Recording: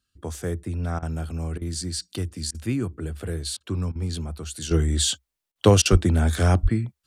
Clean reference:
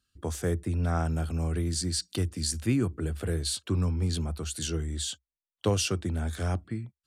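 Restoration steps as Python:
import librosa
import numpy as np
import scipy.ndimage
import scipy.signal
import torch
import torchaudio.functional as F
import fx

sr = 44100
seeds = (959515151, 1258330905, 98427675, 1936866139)

y = fx.highpass(x, sr, hz=140.0, slope=24, at=(5.91, 6.03), fade=0.02)
y = fx.highpass(y, sr, hz=140.0, slope=24, at=(6.62, 6.74), fade=0.02)
y = fx.fix_interpolate(y, sr, at_s=(0.99, 1.58, 2.51, 3.57, 3.92, 5.52, 5.82), length_ms=34.0)
y = fx.fix_level(y, sr, at_s=4.71, step_db=-10.5)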